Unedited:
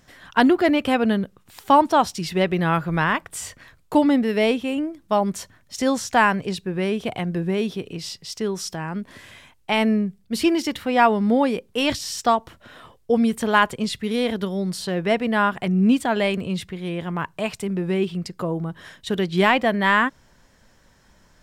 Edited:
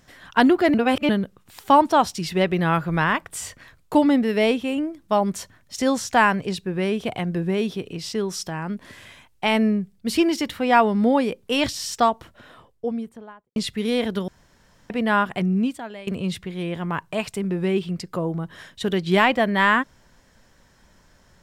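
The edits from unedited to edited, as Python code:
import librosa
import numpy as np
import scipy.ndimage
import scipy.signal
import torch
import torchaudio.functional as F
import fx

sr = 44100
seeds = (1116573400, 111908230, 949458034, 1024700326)

y = fx.studio_fade_out(x, sr, start_s=12.34, length_s=1.48)
y = fx.edit(y, sr, fx.reverse_span(start_s=0.74, length_s=0.35),
    fx.cut(start_s=8.12, length_s=0.26),
    fx.room_tone_fill(start_s=14.54, length_s=0.62),
    fx.fade_out_to(start_s=15.69, length_s=0.64, curve='qua', floor_db=-18.0), tone=tone)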